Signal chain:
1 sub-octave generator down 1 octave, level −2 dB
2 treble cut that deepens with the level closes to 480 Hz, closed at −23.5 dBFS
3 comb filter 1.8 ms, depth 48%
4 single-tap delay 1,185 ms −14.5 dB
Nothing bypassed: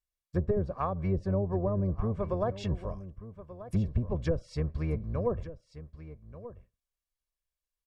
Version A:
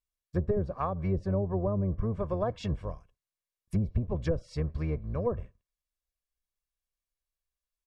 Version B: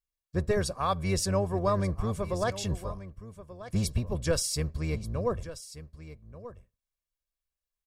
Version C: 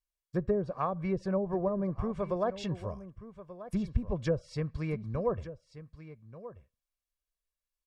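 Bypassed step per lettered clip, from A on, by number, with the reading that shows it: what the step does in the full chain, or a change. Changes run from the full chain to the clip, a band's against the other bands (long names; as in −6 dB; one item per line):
4, change in momentary loudness spread −11 LU
2, 4 kHz band +13.5 dB
1, 125 Hz band −5.5 dB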